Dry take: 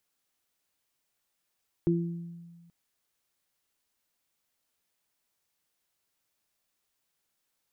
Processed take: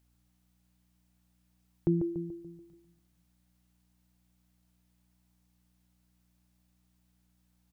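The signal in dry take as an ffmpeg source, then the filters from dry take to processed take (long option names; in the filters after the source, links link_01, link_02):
-f lavfi -i "aevalsrc='0.0668*pow(10,-3*t/1.58)*sin(2*PI*170*t)+0.0841*pow(10,-3*t/0.63)*sin(2*PI*340*t)':duration=0.83:sample_rate=44100"
-filter_complex "[0:a]equalizer=frequency=780:width_type=o:width=0.58:gain=4,aeval=exprs='val(0)+0.000355*(sin(2*PI*60*n/s)+sin(2*PI*2*60*n/s)/2+sin(2*PI*3*60*n/s)/3+sin(2*PI*4*60*n/s)/4+sin(2*PI*5*60*n/s)/5)':channel_layout=same,asplit=2[link_01][link_02];[link_02]adelay=144,lowpass=frequency=1100:poles=1,volume=-6dB,asplit=2[link_03][link_04];[link_04]adelay=144,lowpass=frequency=1100:poles=1,volume=0.52,asplit=2[link_05][link_06];[link_06]adelay=144,lowpass=frequency=1100:poles=1,volume=0.52,asplit=2[link_07][link_08];[link_08]adelay=144,lowpass=frequency=1100:poles=1,volume=0.52,asplit=2[link_09][link_10];[link_10]adelay=144,lowpass=frequency=1100:poles=1,volume=0.52,asplit=2[link_11][link_12];[link_12]adelay=144,lowpass=frequency=1100:poles=1,volume=0.52[link_13];[link_01][link_03][link_05][link_07][link_09][link_11][link_13]amix=inputs=7:normalize=0"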